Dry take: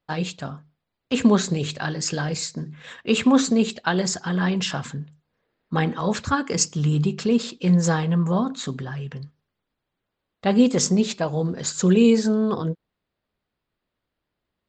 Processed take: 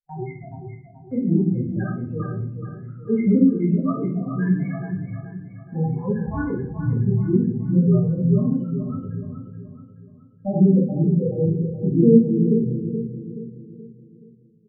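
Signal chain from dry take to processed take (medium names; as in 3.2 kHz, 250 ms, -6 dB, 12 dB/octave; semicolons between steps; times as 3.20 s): pitch shift switched off and on -4.5 st, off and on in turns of 167 ms; loudest bins only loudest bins 4; gate -43 dBFS, range -14 dB; rippled Chebyshev low-pass 2.1 kHz, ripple 3 dB; feedback delay 426 ms, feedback 44%, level -9 dB; simulated room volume 85 m³, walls mixed, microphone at 1.7 m; trim -4 dB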